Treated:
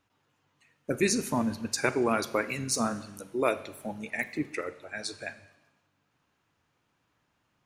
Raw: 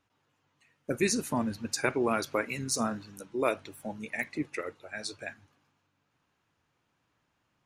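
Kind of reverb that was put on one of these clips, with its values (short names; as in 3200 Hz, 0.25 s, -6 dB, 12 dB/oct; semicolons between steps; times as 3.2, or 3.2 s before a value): Schroeder reverb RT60 1 s, combs from 31 ms, DRR 14.5 dB; gain +1.5 dB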